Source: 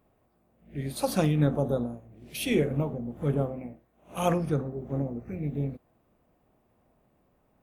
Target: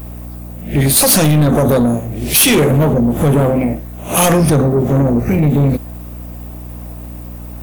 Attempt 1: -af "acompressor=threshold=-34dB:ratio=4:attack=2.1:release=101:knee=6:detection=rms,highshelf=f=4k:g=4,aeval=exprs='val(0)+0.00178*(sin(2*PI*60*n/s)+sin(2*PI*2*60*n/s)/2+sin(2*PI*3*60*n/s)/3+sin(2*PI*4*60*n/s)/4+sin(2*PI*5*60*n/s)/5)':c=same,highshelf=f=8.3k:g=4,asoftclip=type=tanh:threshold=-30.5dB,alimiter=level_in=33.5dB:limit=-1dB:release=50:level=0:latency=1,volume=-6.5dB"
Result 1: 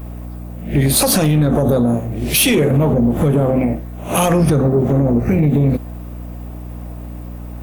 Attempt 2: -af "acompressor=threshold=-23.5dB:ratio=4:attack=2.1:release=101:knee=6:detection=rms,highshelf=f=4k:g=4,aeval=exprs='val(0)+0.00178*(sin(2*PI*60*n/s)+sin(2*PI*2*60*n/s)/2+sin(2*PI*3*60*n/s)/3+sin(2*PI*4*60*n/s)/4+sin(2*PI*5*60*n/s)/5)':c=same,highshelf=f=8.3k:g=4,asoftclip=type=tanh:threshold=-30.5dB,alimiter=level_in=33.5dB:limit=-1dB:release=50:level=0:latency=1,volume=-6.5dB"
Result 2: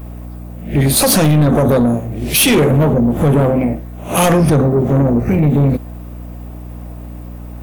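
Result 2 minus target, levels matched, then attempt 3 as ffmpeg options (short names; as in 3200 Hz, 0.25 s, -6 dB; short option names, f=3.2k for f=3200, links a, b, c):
8000 Hz band -3.0 dB
-af "acompressor=threshold=-23.5dB:ratio=4:attack=2.1:release=101:knee=6:detection=rms,highshelf=f=4k:g=12.5,aeval=exprs='val(0)+0.00178*(sin(2*PI*60*n/s)+sin(2*PI*2*60*n/s)/2+sin(2*PI*3*60*n/s)/3+sin(2*PI*4*60*n/s)/4+sin(2*PI*5*60*n/s)/5)':c=same,highshelf=f=8.3k:g=4,asoftclip=type=tanh:threshold=-30.5dB,alimiter=level_in=33.5dB:limit=-1dB:release=50:level=0:latency=1,volume=-6.5dB"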